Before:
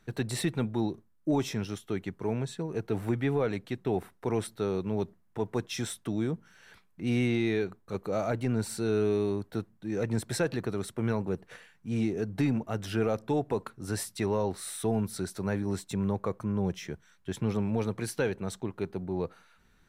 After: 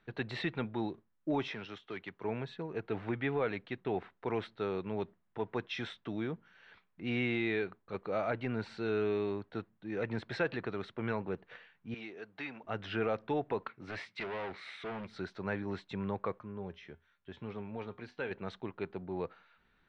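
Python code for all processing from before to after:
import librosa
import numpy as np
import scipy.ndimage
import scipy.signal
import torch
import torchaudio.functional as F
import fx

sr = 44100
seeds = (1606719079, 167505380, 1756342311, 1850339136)

y = fx.chain(x, sr, fx.low_shelf(hz=350.0, db=-8.5),
    fx.overload_stage(gain_db=29.0),
    fx.band_squash(depth_pct=40), at=(1.48, 2.24))
y = fx.chain(y, sr, fx.highpass(hz=1200.0, slope=6),
    fx.peak_eq(hz=7900.0, db=-5.0, octaves=0.34), at=(11.94, 12.64))
y = fx.chain(y, sr, fx.highpass(hz=91.0, slope=12),
    fx.peak_eq(hz=2200.0, db=12.5, octaves=0.34),
    fx.overload_stage(gain_db=33.0), at=(13.69, 15.11))
y = fx.chain(y, sr, fx.high_shelf(hz=10000.0, db=-10.5),
    fx.comb_fb(f0_hz=82.0, decay_s=0.24, harmonics='odd', damping=0.0, mix_pct=60), at=(16.39, 18.31))
y = fx.dynamic_eq(y, sr, hz=2000.0, q=0.73, threshold_db=-46.0, ratio=4.0, max_db=4)
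y = scipy.signal.sosfilt(scipy.signal.butter(4, 3700.0, 'lowpass', fs=sr, output='sos'), y)
y = fx.low_shelf(y, sr, hz=290.0, db=-8.0)
y = F.gain(torch.from_numpy(y), -2.5).numpy()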